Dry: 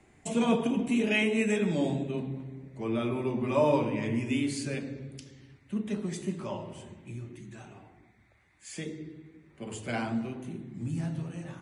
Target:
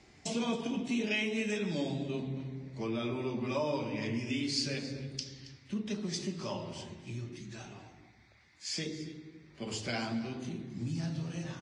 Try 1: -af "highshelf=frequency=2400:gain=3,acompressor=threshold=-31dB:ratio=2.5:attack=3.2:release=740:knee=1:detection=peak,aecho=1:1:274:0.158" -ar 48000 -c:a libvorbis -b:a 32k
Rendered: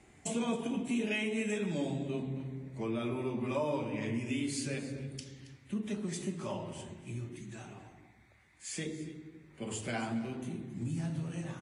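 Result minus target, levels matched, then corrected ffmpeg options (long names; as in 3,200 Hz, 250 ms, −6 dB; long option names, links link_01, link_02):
4,000 Hz band −6.0 dB
-af "highshelf=frequency=2400:gain=3,acompressor=threshold=-31dB:ratio=2.5:attack=3.2:release=740:knee=1:detection=peak,lowpass=frequency=5100:width_type=q:width=4.5,aecho=1:1:274:0.158" -ar 48000 -c:a libvorbis -b:a 32k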